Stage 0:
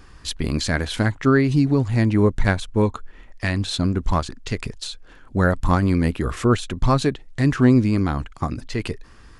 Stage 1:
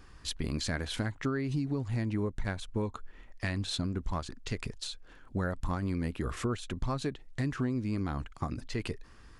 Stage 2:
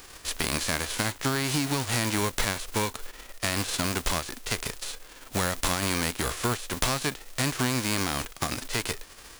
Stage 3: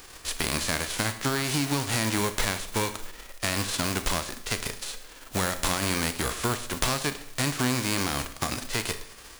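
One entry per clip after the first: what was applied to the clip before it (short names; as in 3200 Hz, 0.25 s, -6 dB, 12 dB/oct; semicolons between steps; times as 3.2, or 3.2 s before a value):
compressor 6:1, threshold -21 dBFS, peak gain reduction 11 dB; gain -7.5 dB
spectral whitening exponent 0.3; gain +4.5 dB
Schroeder reverb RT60 0.7 s, combs from 28 ms, DRR 10.5 dB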